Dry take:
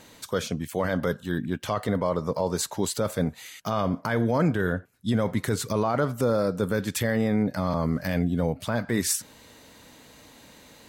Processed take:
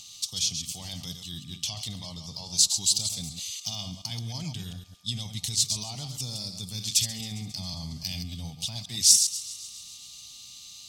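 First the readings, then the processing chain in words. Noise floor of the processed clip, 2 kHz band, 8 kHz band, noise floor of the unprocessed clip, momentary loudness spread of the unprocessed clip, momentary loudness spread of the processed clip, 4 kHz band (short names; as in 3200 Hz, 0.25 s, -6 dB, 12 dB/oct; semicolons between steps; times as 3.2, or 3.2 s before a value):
-47 dBFS, -14.5 dB, +9.5 dB, -52 dBFS, 5 LU, 17 LU, +11.0 dB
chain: reverse delay 0.103 s, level -7.5 dB; pre-emphasis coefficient 0.8; upward compressor, threshold -57 dBFS; whine 1200 Hz -58 dBFS; EQ curve 130 Hz 0 dB, 520 Hz -26 dB, 770 Hz -8 dB, 1500 Hz -28 dB, 2800 Hz +5 dB, 5400 Hz +10 dB, 14000 Hz -13 dB; thinning echo 0.135 s, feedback 68%, high-pass 530 Hz, level -17.5 dB; gain +7 dB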